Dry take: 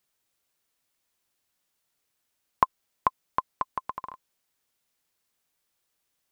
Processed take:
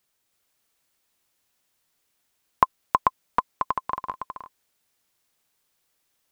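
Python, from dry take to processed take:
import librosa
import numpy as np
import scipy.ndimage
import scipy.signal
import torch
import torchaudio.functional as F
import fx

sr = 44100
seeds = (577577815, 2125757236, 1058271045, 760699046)

y = x + 10.0 ** (-3.0 / 20.0) * np.pad(x, (int(321 * sr / 1000.0), 0))[:len(x)]
y = y * librosa.db_to_amplitude(3.0)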